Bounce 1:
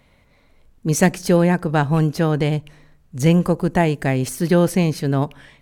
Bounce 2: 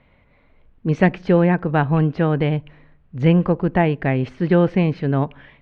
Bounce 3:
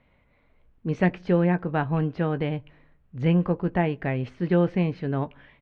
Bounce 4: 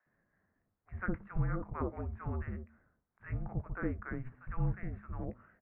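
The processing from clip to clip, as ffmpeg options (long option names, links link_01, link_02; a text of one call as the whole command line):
ffmpeg -i in.wav -af "lowpass=frequency=3000:width=0.5412,lowpass=frequency=3000:width=1.3066" out.wav
ffmpeg -i in.wav -filter_complex "[0:a]asplit=2[link_01][link_02];[link_02]adelay=17,volume=-12dB[link_03];[link_01][link_03]amix=inputs=2:normalize=0,volume=-7dB" out.wav
ffmpeg -i in.wav -filter_complex "[0:a]acrossover=split=160|1100[link_01][link_02][link_03];[link_02]adelay=60[link_04];[link_01]adelay=180[link_05];[link_05][link_04][link_03]amix=inputs=3:normalize=0,highpass=frequency=310:width_type=q:width=0.5412,highpass=frequency=310:width_type=q:width=1.307,lowpass=frequency=2200:width_type=q:width=0.5176,lowpass=frequency=2200:width_type=q:width=0.7071,lowpass=frequency=2200:width_type=q:width=1.932,afreqshift=-380,volume=-7dB" out.wav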